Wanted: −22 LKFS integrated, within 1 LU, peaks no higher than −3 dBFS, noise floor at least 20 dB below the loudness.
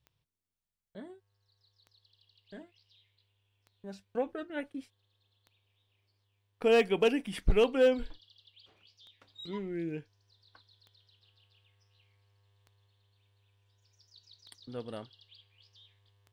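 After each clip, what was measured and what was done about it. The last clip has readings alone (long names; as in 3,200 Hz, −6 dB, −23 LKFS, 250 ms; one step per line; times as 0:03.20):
number of clicks 10; integrated loudness −31.0 LKFS; sample peak −17.0 dBFS; target loudness −22.0 LKFS
→ click removal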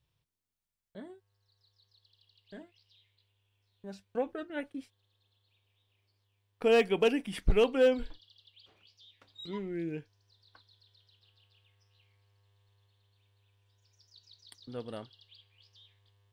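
number of clicks 0; integrated loudness −31.0 LKFS; sample peak −17.0 dBFS; target loudness −22.0 LKFS
→ level +9 dB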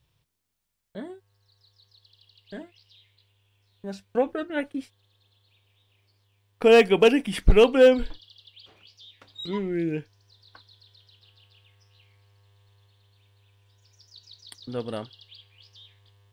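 integrated loudness −22.0 LKFS; sample peak −8.0 dBFS; background noise floor −71 dBFS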